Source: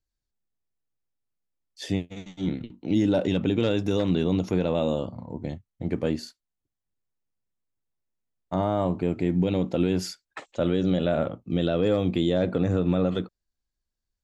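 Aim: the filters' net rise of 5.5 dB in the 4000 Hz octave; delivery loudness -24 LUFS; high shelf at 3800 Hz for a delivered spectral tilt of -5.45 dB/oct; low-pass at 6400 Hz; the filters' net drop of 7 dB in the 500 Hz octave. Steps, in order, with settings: LPF 6400 Hz; bell 500 Hz -9 dB; high shelf 3800 Hz +7.5 dB; bell 4000 Hz +3 dB; gain +4.5 dB

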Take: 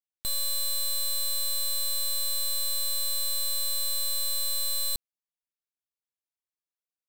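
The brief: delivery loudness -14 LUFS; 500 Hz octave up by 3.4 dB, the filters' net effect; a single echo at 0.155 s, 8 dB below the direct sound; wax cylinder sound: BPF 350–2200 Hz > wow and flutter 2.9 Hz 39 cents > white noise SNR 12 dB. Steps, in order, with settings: BPF 350–2200 Hz; bell 500 Hz +4.5 dB; echo 0.155 s -8 dB; wow and flutter 2.9 Hz 39 cents; white noise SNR 12 dB; gain +26.5 dB

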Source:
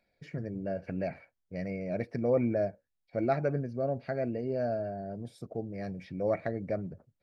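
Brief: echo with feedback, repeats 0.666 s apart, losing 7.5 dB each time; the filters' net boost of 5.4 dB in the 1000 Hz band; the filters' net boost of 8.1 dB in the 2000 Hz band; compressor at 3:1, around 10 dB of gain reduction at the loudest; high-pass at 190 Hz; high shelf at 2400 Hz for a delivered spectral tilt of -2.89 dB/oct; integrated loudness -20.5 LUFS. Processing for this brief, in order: HPF 190 Hz; bell 1000 Hz +8.5 dB; bell 2000 Hz +8.5 dB; high shelf 2400 Hz -3 dB; compressor 3:1, threshold -33 dBFS; feedback echo 0.666 s, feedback 42%, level -7.5 dB; gain +16.5 dB

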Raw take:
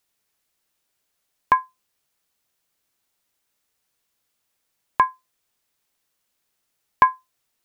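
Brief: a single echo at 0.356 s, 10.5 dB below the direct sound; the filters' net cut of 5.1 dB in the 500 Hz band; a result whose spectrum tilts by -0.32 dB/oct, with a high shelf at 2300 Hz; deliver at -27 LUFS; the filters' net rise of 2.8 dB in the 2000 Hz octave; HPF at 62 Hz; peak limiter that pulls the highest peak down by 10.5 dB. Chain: HPF 62 Hz; bell 500 Hz -7 dB; bell 2000 Hz +5.5 dB; high shelf 2300 Hz -3 dB; limiter -11.5 dBFS; echo 0.356 s -10.5 dB; gain +3 dB

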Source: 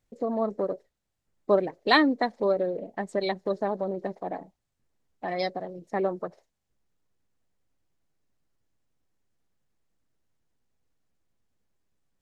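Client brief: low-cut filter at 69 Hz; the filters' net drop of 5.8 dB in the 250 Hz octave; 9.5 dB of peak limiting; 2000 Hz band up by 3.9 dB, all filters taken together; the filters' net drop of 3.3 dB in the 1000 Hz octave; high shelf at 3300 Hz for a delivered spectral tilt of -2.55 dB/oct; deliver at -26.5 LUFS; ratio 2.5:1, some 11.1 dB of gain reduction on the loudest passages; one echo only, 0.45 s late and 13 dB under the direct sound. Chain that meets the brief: HPF 69 Hz; bell 250 Hz -7.5 dB; bell 1000 Hz -5.5 dB; bell 2000 Hz +3.5 dB; high shelf 3300 Hz +8.5 dB; compressor 2.5:1, threshold -30 dBFS; limiter -24 dBFS; echo 0.45 s -13 dB; gain +10.5 dB

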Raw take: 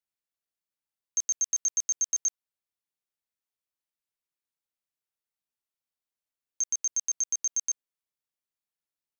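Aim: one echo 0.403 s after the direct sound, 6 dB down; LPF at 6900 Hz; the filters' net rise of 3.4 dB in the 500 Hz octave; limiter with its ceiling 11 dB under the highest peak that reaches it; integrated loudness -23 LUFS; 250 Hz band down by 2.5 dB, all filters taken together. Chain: LPF 6900 Hz; bell 250 Hz -5.5 dB; bell 500 Hz +5.5 dB; limiter -34 dBFS; echo 0.403 s -6 dB; gain +17 dB

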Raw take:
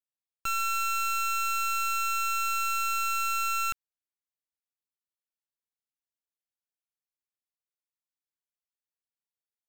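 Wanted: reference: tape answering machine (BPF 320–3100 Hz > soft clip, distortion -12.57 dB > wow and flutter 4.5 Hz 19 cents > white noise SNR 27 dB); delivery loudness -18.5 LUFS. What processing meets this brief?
BPF 320–3100 Hz; soft clip -31.5 dBFS; wow and flutter 4.5 Hz 19 cents; white noise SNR 27 dB; gain +15.5 dB

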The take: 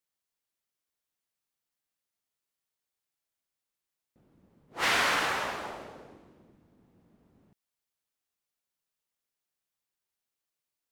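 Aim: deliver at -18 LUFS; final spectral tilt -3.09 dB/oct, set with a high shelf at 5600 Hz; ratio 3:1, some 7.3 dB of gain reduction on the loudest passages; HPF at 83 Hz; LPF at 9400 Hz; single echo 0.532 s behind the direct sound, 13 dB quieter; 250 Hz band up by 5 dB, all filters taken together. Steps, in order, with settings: HPF 83 Hz; LPF 9400 Hz; bell 250 Hz +6.5 dB; high shelf 5600 Hz -9 dB; compressor 3:1, threshold -33 dBFS; echo 0.532 s -13 dB; gain +18.5 dB

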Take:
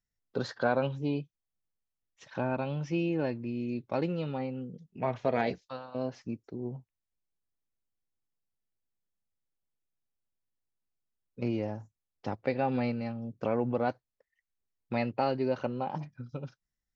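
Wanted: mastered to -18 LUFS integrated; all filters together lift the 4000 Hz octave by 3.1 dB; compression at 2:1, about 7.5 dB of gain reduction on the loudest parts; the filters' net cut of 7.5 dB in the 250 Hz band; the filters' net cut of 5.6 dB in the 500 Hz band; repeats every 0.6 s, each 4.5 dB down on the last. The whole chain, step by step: bell 250 Hz -8 dB; bell 500 Hz -5 dB; bell 4000 Hz +4 dB; compressor 2:1, threshold -41 dBFS; feedback echo 0.6 s, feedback 60%, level -4.5 dB; gain +24.5 dB

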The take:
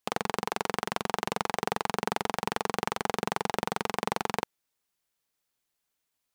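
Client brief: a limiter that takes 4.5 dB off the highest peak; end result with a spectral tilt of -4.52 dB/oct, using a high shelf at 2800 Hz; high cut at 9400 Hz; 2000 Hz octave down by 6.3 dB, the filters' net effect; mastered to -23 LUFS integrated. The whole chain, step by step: LPF 9400 Hz; bell 2000 Hz -7 dB; high shelf 2800 Hz -3.5 dB; gain +13.5 dB; limiter -2.5 dBFS

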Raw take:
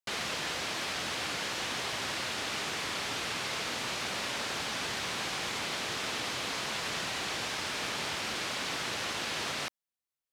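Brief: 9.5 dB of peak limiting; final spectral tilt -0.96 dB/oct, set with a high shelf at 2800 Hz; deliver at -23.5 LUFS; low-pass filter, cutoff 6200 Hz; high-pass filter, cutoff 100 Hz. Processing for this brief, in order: HPF 100 Hz; LPF 6200 Hz; high shelf 2800 Hz +4.5 dB; gain +13 dB; limiter -16.5 dBFS

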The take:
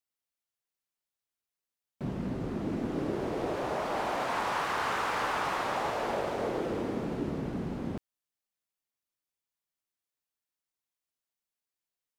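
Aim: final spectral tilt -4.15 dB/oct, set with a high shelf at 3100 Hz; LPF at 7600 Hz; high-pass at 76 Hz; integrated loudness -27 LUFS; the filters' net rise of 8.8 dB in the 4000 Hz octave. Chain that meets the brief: HPF 76 Hz; LPF 7600 Hz; high shelf 3100 Hz +5 dB; bell 4000 Hz +8 dB; gain +4 dB

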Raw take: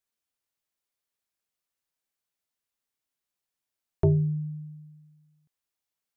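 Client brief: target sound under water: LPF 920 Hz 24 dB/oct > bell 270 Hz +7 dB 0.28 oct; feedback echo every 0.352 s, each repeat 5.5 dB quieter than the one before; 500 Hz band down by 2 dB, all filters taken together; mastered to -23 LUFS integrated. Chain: LPF 920 Hz 24 dB/oct; bell 270 Hz +7 dB 0.28 oct; bell 500 Hz -3.5 dB; feedback echo 0.352 s, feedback 53%, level -5.5 dB; gain +5.5 dB

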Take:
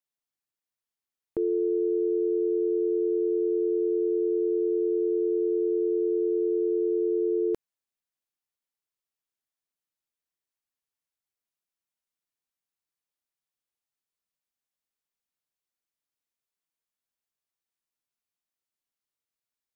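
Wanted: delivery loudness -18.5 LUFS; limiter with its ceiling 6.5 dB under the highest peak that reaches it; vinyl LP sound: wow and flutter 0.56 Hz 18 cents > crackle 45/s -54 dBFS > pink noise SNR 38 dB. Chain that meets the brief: limiter -26 dBFS; wow and flutter 0.56 Hz 18 cents; crackle 45/s -54 dBFS; pink noise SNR 38 dB; gain +14 dB

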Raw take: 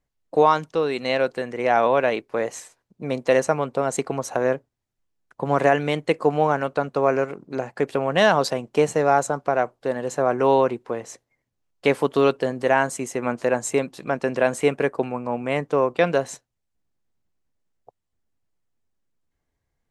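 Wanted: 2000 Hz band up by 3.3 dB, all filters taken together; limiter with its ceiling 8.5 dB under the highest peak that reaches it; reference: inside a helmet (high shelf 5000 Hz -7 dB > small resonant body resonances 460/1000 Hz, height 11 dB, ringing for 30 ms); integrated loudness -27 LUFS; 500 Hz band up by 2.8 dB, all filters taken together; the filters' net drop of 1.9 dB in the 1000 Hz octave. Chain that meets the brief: bell 500 Hz +4.5 dB; bell 1000 Hz -6 dB; bell 2000 Hz +7 dB; limiter -10 dBFS; high shelf 5000 Hz -7 dB; small resonant body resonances 460/1000 Hz, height 11 dB, ringing for 30 ms; gain -10.5 dB

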